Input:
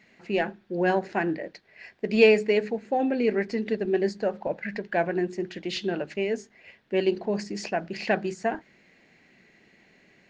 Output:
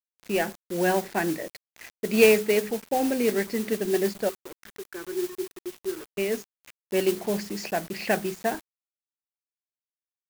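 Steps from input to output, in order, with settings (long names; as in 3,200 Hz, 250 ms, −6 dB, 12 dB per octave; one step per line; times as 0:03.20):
0:04.29–0:06.18: pair of resonant band-passes 680 Hz, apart 1.7 octaves
noise that follows the level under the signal 14 dB
bit reduction 7 bits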